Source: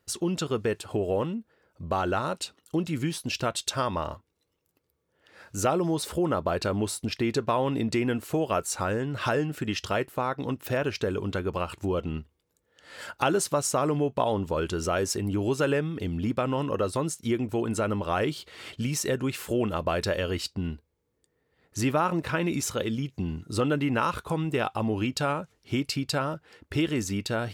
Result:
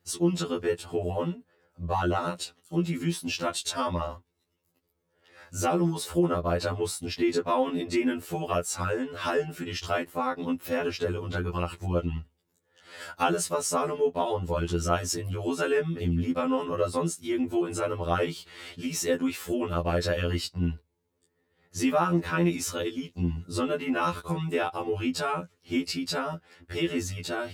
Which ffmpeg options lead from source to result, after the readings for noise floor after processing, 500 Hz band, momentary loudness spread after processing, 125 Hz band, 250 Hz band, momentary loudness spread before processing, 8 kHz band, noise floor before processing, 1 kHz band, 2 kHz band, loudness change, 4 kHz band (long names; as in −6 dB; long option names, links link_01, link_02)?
−76 dBFS, −0.5 dB, 7 LU, −1.0 dB, −0.5 dB, 7 LU, −1.0 dB, −76 dBFS, −0.5 dB, −1.0 dB, −0.5 dB, −0.5 dB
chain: -af "afftfilt=real='re*2*eq(mod(b,4),0)':imag='im*2*eq(mod(b,4),0)':win_size=2048:overlap=0.75,volume=1.5dB"